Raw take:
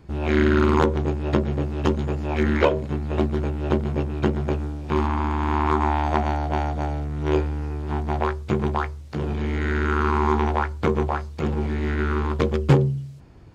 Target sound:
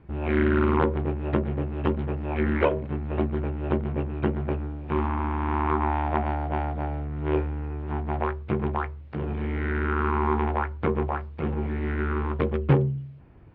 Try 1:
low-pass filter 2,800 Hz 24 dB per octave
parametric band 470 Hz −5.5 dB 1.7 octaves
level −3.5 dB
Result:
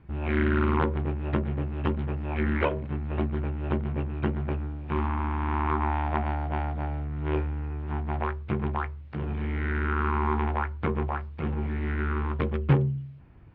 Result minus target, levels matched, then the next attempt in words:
500 Hz band −3.0 dB
low-pass filter 2,800 Hz 24 dB per octave
level −3.5 dB

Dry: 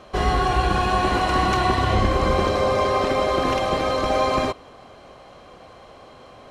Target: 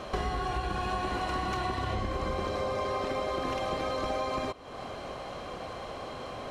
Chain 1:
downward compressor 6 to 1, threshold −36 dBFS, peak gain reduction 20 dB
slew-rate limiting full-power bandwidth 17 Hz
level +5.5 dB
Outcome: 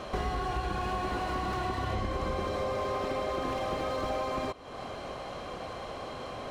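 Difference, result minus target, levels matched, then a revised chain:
slew-rate limiting: distortion +32 dB
downward compressor 6 to 1, threshold −36 dBFS, peak gain reduction 20 dB
slew-rate limiting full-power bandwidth 49.5 Hz
level +5.5 dB

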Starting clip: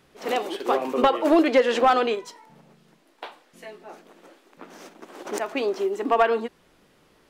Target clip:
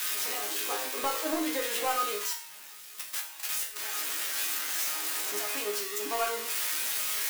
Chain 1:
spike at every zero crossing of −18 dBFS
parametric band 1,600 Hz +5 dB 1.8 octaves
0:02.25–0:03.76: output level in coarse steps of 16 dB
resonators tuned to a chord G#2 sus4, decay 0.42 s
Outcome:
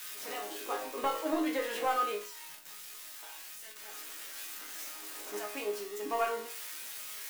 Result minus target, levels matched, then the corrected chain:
spike at every zero crossing: distortion −12 dB
spike at every zero crossing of −6 dBFS
parametric band 1,600 Hz +5 dB 1.8 octaves
0:02.25–0:03.76: output level in coarse steps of 16 dB
resonators tuned to a chord G#2 sus4, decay 0.42 s

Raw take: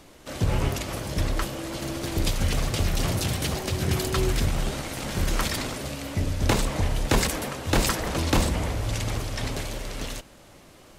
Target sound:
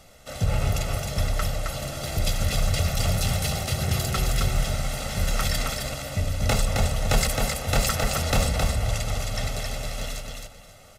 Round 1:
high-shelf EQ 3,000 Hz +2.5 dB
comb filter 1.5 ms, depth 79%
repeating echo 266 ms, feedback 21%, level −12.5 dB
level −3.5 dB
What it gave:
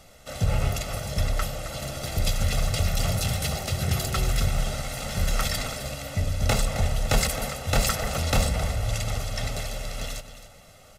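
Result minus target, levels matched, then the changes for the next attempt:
echo-to-direct −8.5 dB
change: repeating echo 266 ms, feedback 21%, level −4 dB

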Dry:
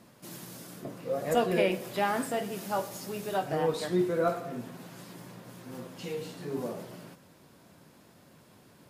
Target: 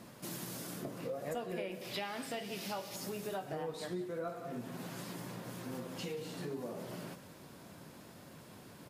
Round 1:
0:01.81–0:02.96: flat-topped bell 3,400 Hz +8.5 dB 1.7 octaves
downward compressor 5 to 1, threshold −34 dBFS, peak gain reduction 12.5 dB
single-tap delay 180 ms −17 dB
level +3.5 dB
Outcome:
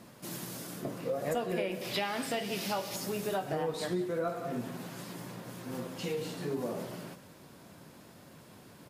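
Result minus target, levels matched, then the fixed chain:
downward compressor: peak gain reduction −7 dB
0:01.81–0:02.96: flat-topped bell 3,400 Hz +8.5 dB 1.7 octaves
downward compressor 5 to 1, threshold −42.5 dBFS, peak gain reduction 19 dB
single-tap delay 180 ms −17 dB
level +3.5 dB

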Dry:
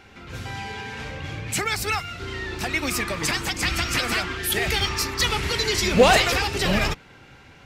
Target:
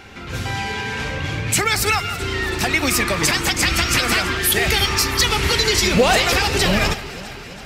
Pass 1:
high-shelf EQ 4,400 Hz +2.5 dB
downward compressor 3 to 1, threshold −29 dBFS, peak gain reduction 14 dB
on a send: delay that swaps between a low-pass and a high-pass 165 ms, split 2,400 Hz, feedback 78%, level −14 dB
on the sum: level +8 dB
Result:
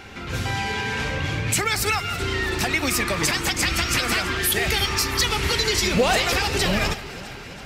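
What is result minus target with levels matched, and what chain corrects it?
downward compressor: peak gain reduction +4.5 dB
high-shelf EQ 4,400 Hz +2.5 dB
downward compressor 3 to 1, threshold −22.5 dBFS, peak gain reduction 10 dB
on a send: delay that swaps between a low-pass and a high-pass 165 ms, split 2,400 Hz, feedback 78%, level −14 dB
on the sum: level +8 dB

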